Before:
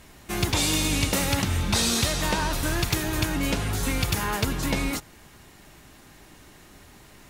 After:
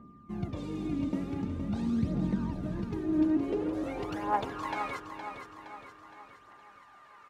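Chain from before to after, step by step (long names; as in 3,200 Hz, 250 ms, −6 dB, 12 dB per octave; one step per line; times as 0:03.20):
phase shifter 0.46 Hz, delay 3.4 ms, feedback 61%
band-pass filter sweep 220 Hz → 1,200 Hz, 0:02.86–0:04.79
steady tone 1,200 Hz −57 dBFS
on a send: repeating echo 466 ms, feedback 51%, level −8 dB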